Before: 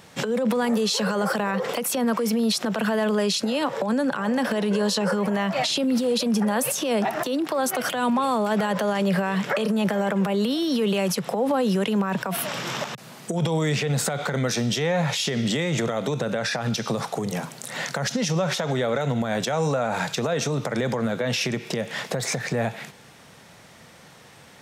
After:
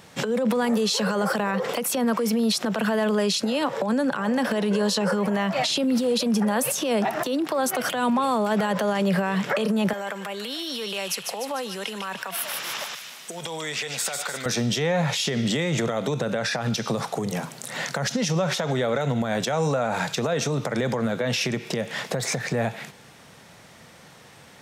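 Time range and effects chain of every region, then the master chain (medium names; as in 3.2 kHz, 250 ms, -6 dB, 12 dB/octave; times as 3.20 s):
9.93–14.46 s: high-pass 1.2 kHz 6 dB/octave + feedback echo behind a high-pass 149 ms, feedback 56%, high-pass 2 kHz, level -4.5 dB
whole clip: none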